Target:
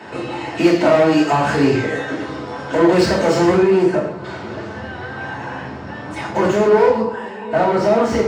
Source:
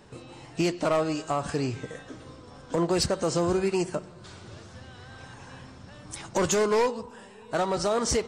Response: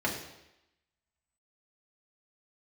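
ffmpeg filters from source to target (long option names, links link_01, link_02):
-filter_complex "[0:a]asetnsamples=nb_out_samples=441:pad=0,asendcmd='3.57 lowpass f 1100',asplit=2[link_01][link_02];[link_02]highpass=frequency=720:poles=1,volume=21dB,asoftclip=type=tanh:threshold=-17.5dB[link_03];[link_01][link_03]amix=inputs=2:normalize=0,lowpass=frequency=3000:poles=1,volume=-6dB[link_04];[1:a]atrim=start_sample=2205,afade=type=out:start_time=0.21:duration=0.01,atrim=end_sample=9702[link_05];[link_04][link_05]afir=irnorm=-1:irlink=0"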